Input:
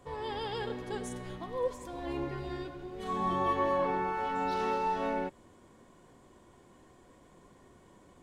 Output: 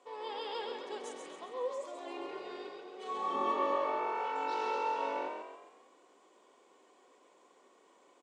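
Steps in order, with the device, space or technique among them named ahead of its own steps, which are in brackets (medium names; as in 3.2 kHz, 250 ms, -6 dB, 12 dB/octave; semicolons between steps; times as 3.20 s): frequency-shifting echo 135 ms, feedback 44%, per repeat +46 Hz, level -4.5 dB; 3.34–3.76 s: peaking EQ 240 Hz +10 dB 0.92 oct; phone speaker on a table (cabinet simulation 350–8200 Hz, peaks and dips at 350 Hz -3 dB, 630 Hz -3 dB, 1.7 kHz -6 dB, 2.6 kHz +3 dB); trim -3 dB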